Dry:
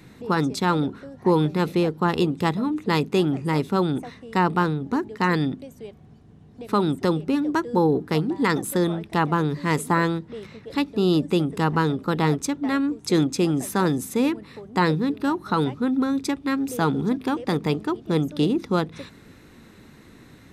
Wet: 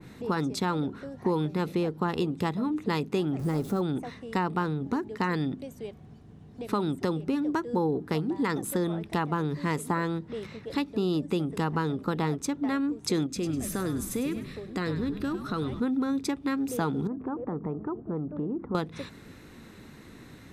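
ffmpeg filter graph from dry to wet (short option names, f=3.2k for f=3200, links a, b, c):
-filter_complex "[0:a]asettb=1/sr,asplit=3[a][b][c];[a]atrim=end=3.394[d];[b]atrim=start=3.39:end=3.81,asetpts=PTS-STARTPTS,afade=t=in:d=0.004:c=qsin,afade=t=out:st=0.416:d=0.004:c=qsin,aeval=exprs='val(0)+0.5*0.0266*sgn(val(0))':c=same,equalizer=f=2.6k:t=o:w=1.8:g=-10,bandreject=f=940:w=8.4[e];[c]atrim=start=3.806[f];[d][e]acrossfade=d=0.004:c1=hsin:c2=qsin[g];[g][f]acrossfade=d=0.004:c1=qsin:c2=hsin,asettb=1/sr,asplit=3[h][i][j];[h]atrim=end=13.264[k];[i]atrim=start=13.26:end=15.8,asetpts=PTS-STARTPTS,afade=t=in:d=0.004:c=qsin,afade=t=out:st=2.536:d=0.004:c=qsin,equalizer=f=910:t=o:w=0.33:g=-13.5,acompressor=threshold=-27dB:ratio=2.5:attack=3.2:release=140:knee=1:detection=peak,asplit=5[l][m][n][o][p];[m]adelay=101,afreqshift=-73,volume=-10dB[q];[n]adelay=202,afreqshift=-146,volume=-17.7dB[r];[o]adelay=303,afreqshift=-219,volume=-25.5dB[s];[p]adelay=404,afreqshift=-292,volume=-33.2dB[t];[l][q][r][s][t]amix=inputs=5:normalize=0,atrim=end_sample=112014[u];[j]atrim=start=15.796[v];[k][u]acrossfade=d=0.004:c1=hsin:c2=qsin[w];[w][v]acrossfade=d=0.004:c1=qsin:c2=hsin,asettb=1/sr,asplit=3[x][y][z];[x]atrim=end=17.074[aa];[y]atrim=start=17.07:end=18.75,asetpts=PTS-STARTPTS,afade=t=in:d=0.004:c=qsin,afade=t=out:st=1.676:d=0.004:c=qsin,lowpass=f=1.3k:w=0.5412,lowpass=f=1.3k:w=1.3066,acompressor=threshold=-30dB:ratio=3:attack=3.2:release=140:knee=1:detection=peak[ab];[z]atrim=start=18.746[ac];[aa][ab]acrossfade=d=0.004:c1=hsin:c2=qsin[ad];[ad][ac]acrossfade=d=0.004:c1=qsin:c2=hsin,acompressor=threshold=-26dB:ratio=3,adynamicequalizer=threshold=0.00708:dfrequency=1800:dqfactor=0.7:tfrequency=1800:tqfactor=0.7:attack=5:release=100:ratio=0.375:range=1.5:mode=cutabove:tftype=highshelf"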